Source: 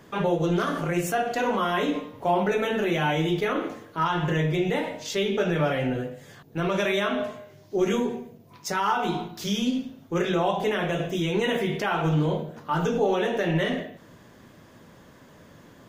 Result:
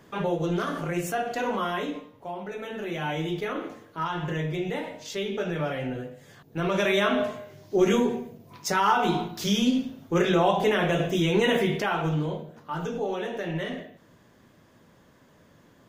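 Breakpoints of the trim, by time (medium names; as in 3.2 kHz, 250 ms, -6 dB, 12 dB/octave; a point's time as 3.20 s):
1.67 s -3 dB
2.36 s -13.5 dB
3.13 s -5 dB
6.15 s -5 dB
7.05 s +2.5 dB
11.61 s +2.5 dB
12.40 s -6.5 dB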